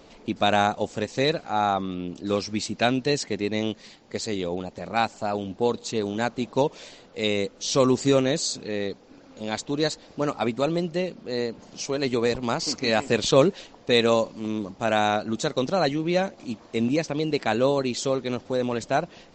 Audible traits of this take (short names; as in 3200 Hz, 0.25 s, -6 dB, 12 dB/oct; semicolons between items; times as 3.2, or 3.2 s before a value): noise floor -51 dBFS; spectral tilt -4.5 dB/oct